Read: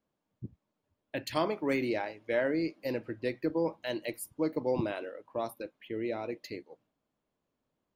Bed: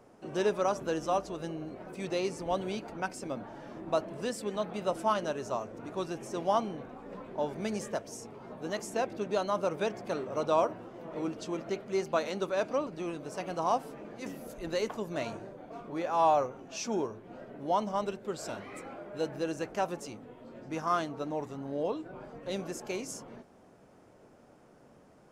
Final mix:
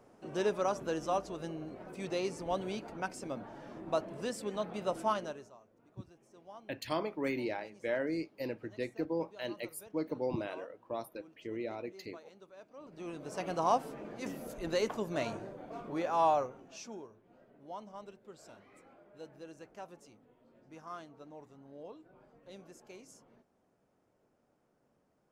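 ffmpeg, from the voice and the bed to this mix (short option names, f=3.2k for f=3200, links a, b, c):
-filter_complex "[0:a]adelay=5550,volume=-4.5dB[a];[1:a]volume=20.5dB,afade=t=out:st=5.09:d=0.43:silence=0.0944061,afade=t=in:st=12.76:d=0.71:silence=0.0668344,afade=t=out:st=15.91:d=1.09:silence=0.158489[b];[a][b]amix=inputs=2:normalize=0"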